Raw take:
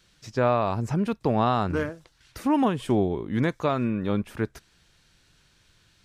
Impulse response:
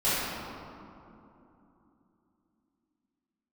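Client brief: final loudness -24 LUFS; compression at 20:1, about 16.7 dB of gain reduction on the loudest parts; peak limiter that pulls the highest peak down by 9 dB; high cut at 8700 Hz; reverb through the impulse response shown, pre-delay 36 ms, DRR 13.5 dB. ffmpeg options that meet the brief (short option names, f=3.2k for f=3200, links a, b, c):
-filter_complex "[0:a]lowpass=8.7k,acompressor=threshold=-34dB:ratio=20,alimiter=level_in=7.5dB:limit=-24dB:level=0:latency=1,volume=-7.5dB,asplit=2[a][b];[1:a]atrim=start_sample=2205,adelay=36[c];[b][c]afir=irnorm=-1:irlink=0,volume=-27.5dB[d];[a][d]amix=inputs=2:normalize=0,volume=18dB"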